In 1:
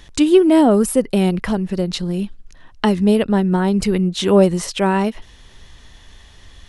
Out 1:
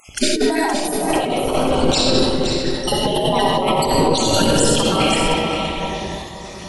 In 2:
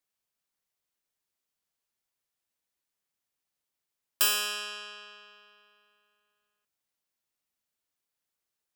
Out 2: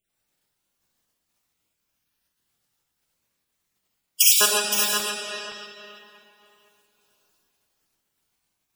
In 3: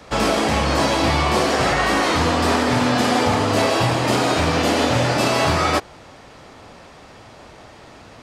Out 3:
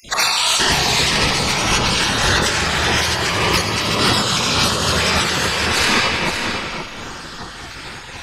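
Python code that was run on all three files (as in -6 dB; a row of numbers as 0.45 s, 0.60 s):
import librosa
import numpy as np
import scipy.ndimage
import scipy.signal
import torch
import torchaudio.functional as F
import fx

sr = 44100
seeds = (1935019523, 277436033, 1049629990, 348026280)

p1 = fx.spec_dropout(x, sr, seeds[0], share_pct=67)
p2 = fx.low_shelf(p1, sr, hz=120.0, db=-8.5)
p3 = fx.rev_freeverb(p2, sr, rt60_s=2.7, hf_ratio=0.65, predelay_ms=20, drr_db=-3.0)
p4 = fx.volume_shaper(p3, sr, bpm=105, per_beat=1, depth_db=-5, release_ms=172.0, shape='slow start')
p5 = p3 + (p4 * 10.0 ** (3.0 / 20.0))
p6 = fx.filter_lfo_notch(p5, sr, shape='saw_up', hz=0.4, low_hz=940.0, high_hz=2400.0, q=2.2)
p7 = fx.hum_notches(p6, sr, base_hz=50, count=7)
p8 = fx.spec_gate(p7, sr, threshold_db=-10, keep='weak')
p9 = fx.over_compress(p8, sr, threshold_db=-25.0, ratio=-1.0)
p10 = fx.low_shelf(p9, sr, hz=290.0, db=6.5)
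p11 = p10 + fx.echo_single(p10, sr, ms=519, db=-7.5, dry=0)
y = p11 * 10.0 ** (-2 / 20.0) / np.max(np.abs(p11))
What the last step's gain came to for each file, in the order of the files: +5.5 dB, +12.0 dB, +6.0 dB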